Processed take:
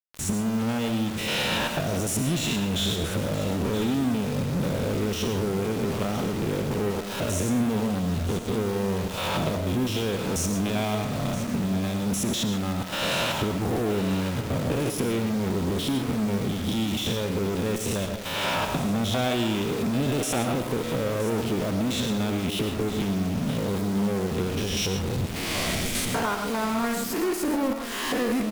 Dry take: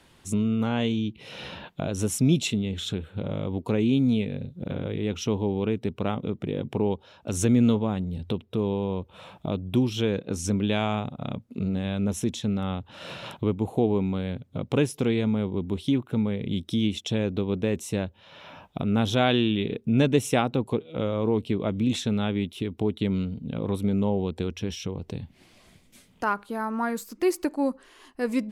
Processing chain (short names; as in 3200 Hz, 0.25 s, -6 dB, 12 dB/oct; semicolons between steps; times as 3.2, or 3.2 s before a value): stepped spectrum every 0.1 s; recorder AGC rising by 54 dB/s; low shelf 260 Hz -2.5 dB; bit-crush 7-bit; in parallel at -9 dB: fuzz box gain 40 dB, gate -43 dBFS; on the sum: echo 0.972 s -13 dB; on a send at -7 dB: reverb RT60 0.40 s, pre-delay 70 ms; on the sum: gain -7.5 dB